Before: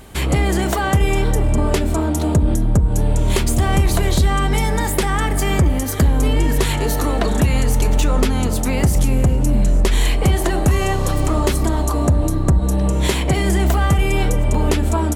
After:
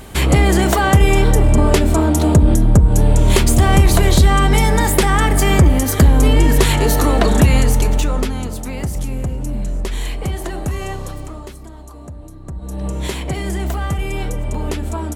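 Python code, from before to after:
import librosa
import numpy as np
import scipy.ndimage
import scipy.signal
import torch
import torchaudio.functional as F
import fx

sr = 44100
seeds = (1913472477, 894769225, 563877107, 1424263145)

y = fx.gain(x, sr, db=fx.line((7.54, 4.5), (8.58, -7.0), (10.94, -7.0), (11.6, -18.5), (12.4, -18.5), (12.86, -5.5)))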